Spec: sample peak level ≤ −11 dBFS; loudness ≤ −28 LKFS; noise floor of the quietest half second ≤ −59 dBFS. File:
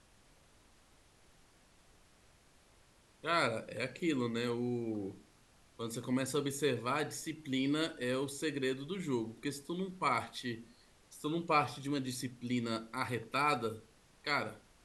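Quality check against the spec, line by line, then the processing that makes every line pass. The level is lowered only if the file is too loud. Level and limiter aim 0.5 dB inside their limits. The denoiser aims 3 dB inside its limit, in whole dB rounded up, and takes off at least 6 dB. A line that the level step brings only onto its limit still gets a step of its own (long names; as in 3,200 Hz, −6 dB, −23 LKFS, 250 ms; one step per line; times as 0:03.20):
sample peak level −16.5 dBFS: in spec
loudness −36.5 LKFS: in spec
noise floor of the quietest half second −65 dBFS: in spec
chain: no processing needed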